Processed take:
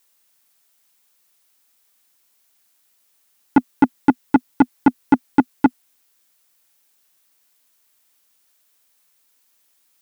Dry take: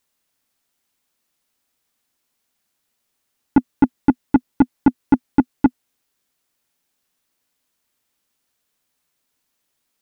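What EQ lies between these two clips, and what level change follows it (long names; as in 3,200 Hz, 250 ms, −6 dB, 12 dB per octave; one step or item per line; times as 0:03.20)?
spectral tilt +3.5 dB per octave
high-shelf EQ 2,000 Hz −8 dB
+6.5 dB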